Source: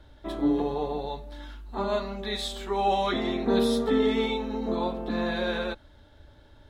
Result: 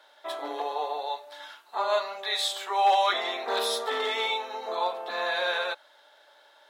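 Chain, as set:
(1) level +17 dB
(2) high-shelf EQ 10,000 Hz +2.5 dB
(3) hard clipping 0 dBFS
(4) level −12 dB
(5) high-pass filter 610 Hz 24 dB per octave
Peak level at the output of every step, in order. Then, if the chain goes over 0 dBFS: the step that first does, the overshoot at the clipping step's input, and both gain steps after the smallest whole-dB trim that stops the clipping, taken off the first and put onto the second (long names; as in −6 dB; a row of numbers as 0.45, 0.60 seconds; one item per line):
+4.5, +4.5, 0.0, −12.0, −12.5 dBFS
step 1, 4.5 dB
step 1 +12 dB, step 4 −7 dB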